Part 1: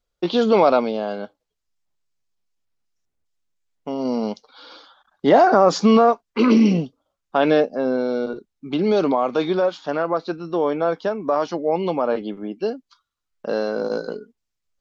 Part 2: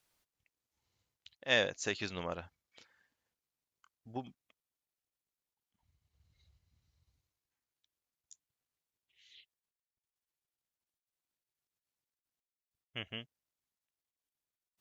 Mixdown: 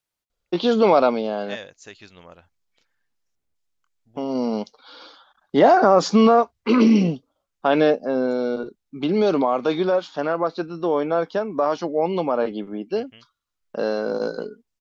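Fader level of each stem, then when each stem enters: -0.5 dB, -6.5 dB; 0.30 s, 0.00 s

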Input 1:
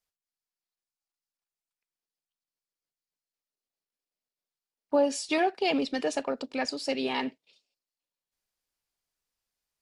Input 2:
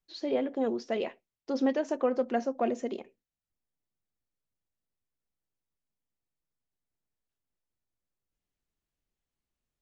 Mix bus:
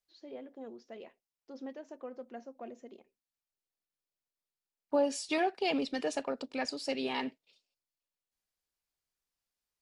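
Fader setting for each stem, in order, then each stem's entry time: -4.5 dB, -16.5 dB; 0.00 s, 0.00 s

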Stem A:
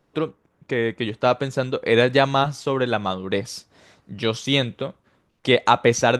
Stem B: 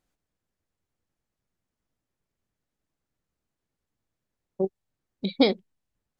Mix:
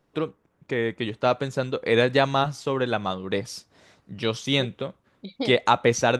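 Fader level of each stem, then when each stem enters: -3.0 dB, -9.5 dB; 0.00 s, 0.00 s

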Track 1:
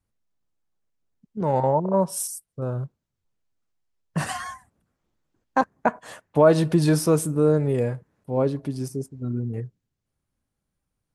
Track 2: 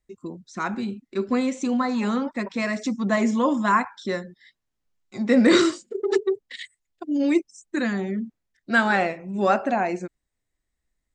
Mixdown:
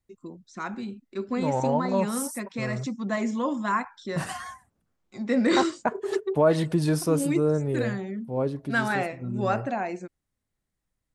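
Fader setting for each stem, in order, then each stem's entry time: -4.5 dB, -6.0 dB; 0.00 s, 0.00 s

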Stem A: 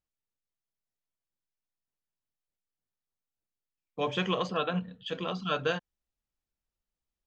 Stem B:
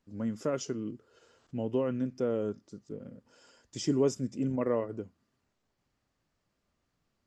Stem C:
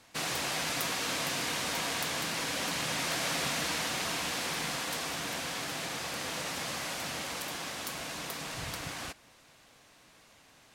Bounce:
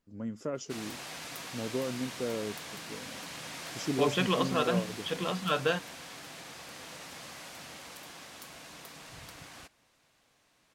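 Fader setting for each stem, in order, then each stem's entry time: +1.0 dB, -4.0 dB, -9.5 dB; 0.00 s, 0.00 s, 0.55 s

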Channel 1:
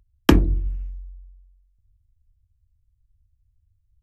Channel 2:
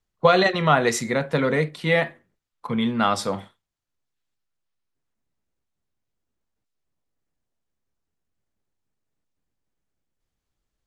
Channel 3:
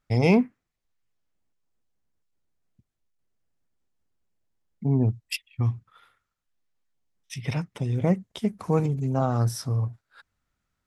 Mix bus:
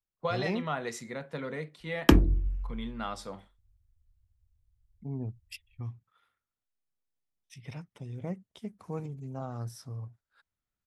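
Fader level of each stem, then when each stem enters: -4.5 dB, -15.5 dB, -14.0 dB; 1.80 s, 0.00 s, 0.20 s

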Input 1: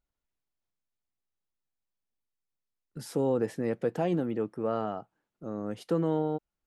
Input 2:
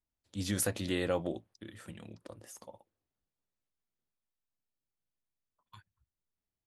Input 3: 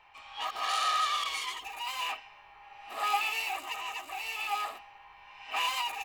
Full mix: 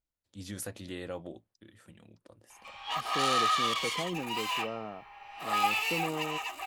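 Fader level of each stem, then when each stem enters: -8.0 dB, -7.5 dB, +1.5 dB; 0.00 s, 0.00 s, 2.50 s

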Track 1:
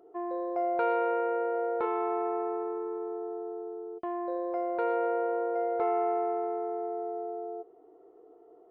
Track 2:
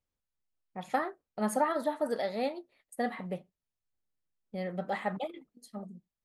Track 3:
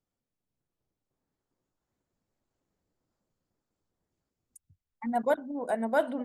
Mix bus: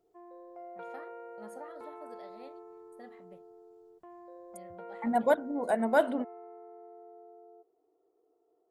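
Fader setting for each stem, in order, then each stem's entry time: -17.0 dB, -19.5 dB, +1.5 dB; 0.00 s, 0.00 s, 0.00 s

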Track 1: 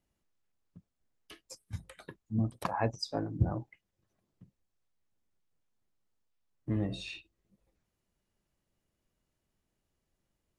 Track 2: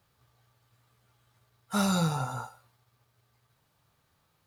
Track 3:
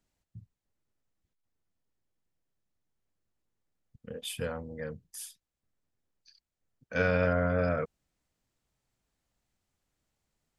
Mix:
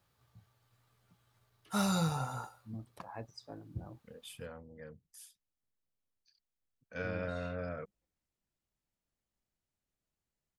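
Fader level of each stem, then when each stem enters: -14.0 dB, -4.5 dB, -11.5 dB; 0.35 s, 0.00 s, 0.00 s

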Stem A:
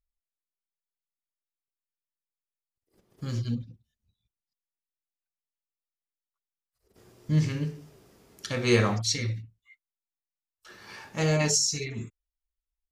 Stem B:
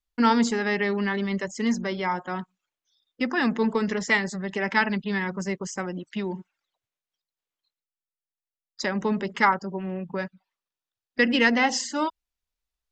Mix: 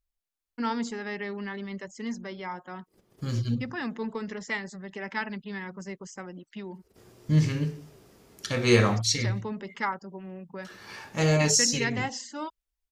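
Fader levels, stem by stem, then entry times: +2.0 dB, -9.5 dB; 0.00 s, 0.40 s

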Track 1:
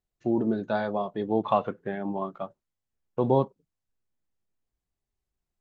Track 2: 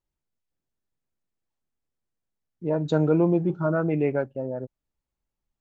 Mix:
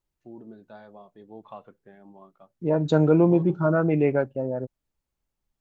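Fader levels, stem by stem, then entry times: -18.5 dB, +2.5 dB; 0.00 s, 0.00 s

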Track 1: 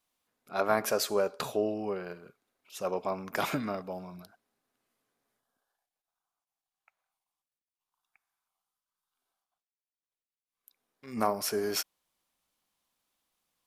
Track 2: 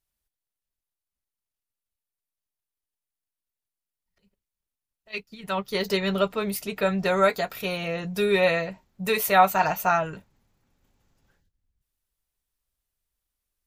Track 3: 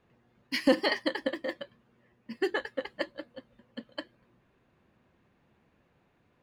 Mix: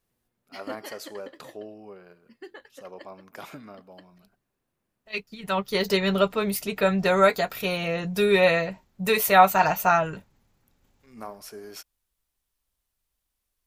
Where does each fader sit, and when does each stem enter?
-10.5 dB, +2.0 dB, -14.0 dB; 0.00 s, 0.00 s, 0.00 s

